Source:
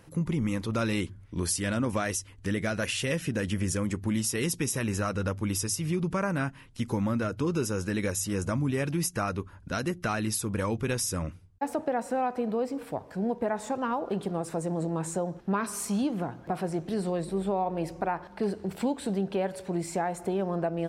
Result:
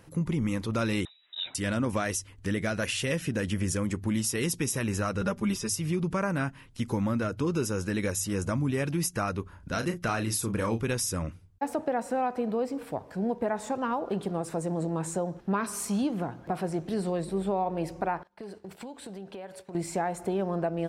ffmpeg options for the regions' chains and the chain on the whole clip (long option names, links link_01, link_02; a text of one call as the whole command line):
ffmpeg -i in.wav -filter_complex "[0:a]asettb=1/sr,asplit=3[link_01][link_02][link_03];[link_01]atrim=end=1.054[link_04];[link_02]atrim=start=1.05:end=1.55,asetpts=PTS-STARTPTS,afade=type=in:duration=0.004:curve=qsin,afade=type=out:start_time=0.496:duration=0.004:curve=qsin,highpass=260,lowpass=frequency=3400:width_type=q:width=0.5098,lowpass=frequency=3400:width_type=q:width=0.6013,lowpass=frequency=3400:width_type=q:width=0.9,lowpass=frequency=3400:width_type=q:width=2.563,afreqshift=-4000[link_05];[link_03]atrim=start=1.546[link_06];[link_04][link_05]acrossfade=duration=0.004:curve1=hsin:curve2=qsin[link_07];[link_07][link_06]acrossfade=duration=0.004:curve1=qsin:curve2=hsin,asettb=1/sr,asplit=3[link_08][link_09][link_10];[link_08]atrim=end=5.214[link_11];[link_09]atrim=start=5.21:end=5.69,asetpts=PTS-STARTPTS,afade=type=in:duration=0.004:curve=qsin,afade=type=out:start_time=0.476:duration=0.004:curve=qsin,acrossover=split=5000[link_12][link_13];[link_13]acompressor=threshold=-44dB:ratio=4:attack=1:release=60[link_14];[link_12][link_14]amix=inputs=2:normalize=0,aecho=1:1:5:0.82,atrim=end_sample=21168[link_15];[link_10]atrim=start=5.686[link_16];[link_11][link_15]acrossfade=duration=0.004:curve1=hsin:curve2=qsin[link_17];[link_17][link_16]acrossfade=duration=0.004:curve1=qsin:curve2=hsin,asettb=1/sr,asplit=3[link_18][link_19][link_20];[link_18]atrim=end=9.434[link_21];[link_19]atrim=start=9.43:end=10.83,asetpts=PTS-STARTPTS,afade=type=in:duration=0.004:curve=qsin,afade=type=out:start_time=1.396:duration=0.004:curve=qsin,acompressor=mode=upward:threshold=-48dB:ratio=2.5:attack=3.2:release=140:knee=2.83:detection=peak,asplit=2[link_22][link_23];[link_23]adelay=35,volume=-8dB[link_24];[link_22][link_24]amix=inputs=2:normalize=0,atrim=end_sample=61740[link_25];[link_20]atrim=start=10.826[link_26];[link_21][link_25]acrossfade=duration=0.004:curve1=hsin:curve2=qsin[link_27];[link_27][link_26]acrossfade=duration=0.004:curve1=qsin:curve2=hsin,asettb=1/sr,asplit=3[link_28][link_29][link_30];[link_28]atrim=end=18.234[link_31];[link_29]atrim=start=18.23:end=19.75,asetpts=PTS-STARTPTS,afade=type=in:duration=0.004:curve=qsin,afade=type=out:start_time=1.516:duration=0.004:curve=qsin,agate=range=-33dB:threshold=-37dB:ratio=3:release=100:detection=peak,lowshelf=frequency=320:gain=-8,acompressor=threshold=-38dB:ratio=5:attack=3.2:release=140:knee=1:detection=peak[link_32];[link_30]atrim=start=19.746[link_33];[link_31][link_32]acrossfade=duration=0.004:curve1=hsin:curve2=qsin[link_34];[link_34][link_33]acrossfade=duration=0.004:curve1=qsin:curve2=hsin" out.wav